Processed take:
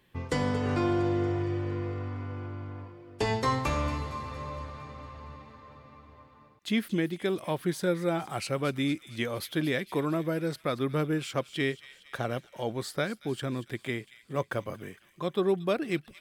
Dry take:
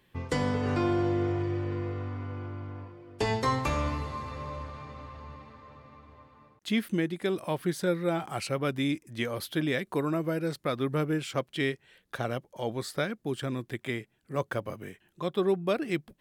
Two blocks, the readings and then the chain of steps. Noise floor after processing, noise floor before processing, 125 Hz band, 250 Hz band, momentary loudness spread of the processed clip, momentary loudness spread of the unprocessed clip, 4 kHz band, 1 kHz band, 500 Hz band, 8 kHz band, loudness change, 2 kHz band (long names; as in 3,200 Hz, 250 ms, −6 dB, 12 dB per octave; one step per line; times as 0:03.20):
−60 dBFS, −71 dBFS, 0.0 dB, 0.0 dB, 14 LU, 15 LU, +0.5 dB, 0.0 dB, 0.0 dB, +0.5 dB, 0.0 dB, 0.0 dB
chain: delay with a high-pass on its return 230 ms, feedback 61%, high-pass 2,600 Hz, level −13 dB